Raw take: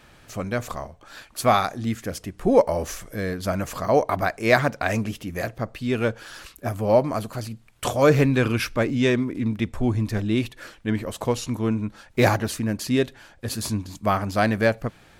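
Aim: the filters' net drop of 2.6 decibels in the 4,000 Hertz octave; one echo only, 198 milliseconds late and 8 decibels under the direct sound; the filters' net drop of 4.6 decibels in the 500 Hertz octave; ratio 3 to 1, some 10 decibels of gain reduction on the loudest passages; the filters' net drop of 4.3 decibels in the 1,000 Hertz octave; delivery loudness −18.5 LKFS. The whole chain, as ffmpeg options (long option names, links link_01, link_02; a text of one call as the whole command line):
ffmpeg -i in.wav -af "equalizer=frequency=500:width_type=o:gain=-4.5,equalizer=frequency=1000:width_type=o:gain=-4,equalizer=frequency=4000:width_type=o:gain=-3,acompressor=threshold=-29dB:ratio=3,aecho=1:1:198:0.398,volume=14dB" out.wav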